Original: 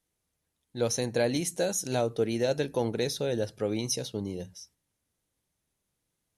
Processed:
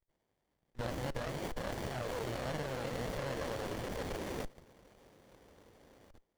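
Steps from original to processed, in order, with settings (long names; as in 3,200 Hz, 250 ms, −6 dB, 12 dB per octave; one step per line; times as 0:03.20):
running median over 5 samples
delay with pitch and tempo change per echo 89 ms, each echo +1 semitone, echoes 2
high-pass filter 1,100 Hz 12 dB per octave
in parallel at −4.5 dB: soft clipping −28.5 dBFS, distortion −16 dB
on the sum: high-shelf EQ 9,500 Hz +2 dB
on a send: feedback delay with all-pass diffusion 453 ms, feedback 53%, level −9 dB
on the sum: output level in coarse steps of 21 dB
windowed peak hold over 33 samples
level +6.5 dB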